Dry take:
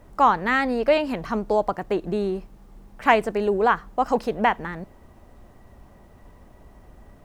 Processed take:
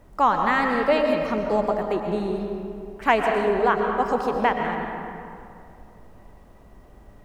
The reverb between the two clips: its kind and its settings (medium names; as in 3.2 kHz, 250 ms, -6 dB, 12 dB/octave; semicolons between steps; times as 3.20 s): algorithmic reverb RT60 2.5 s, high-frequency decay 0.55×, pre-delay 80 ms, DRR 2.5 dB; trim -2 dB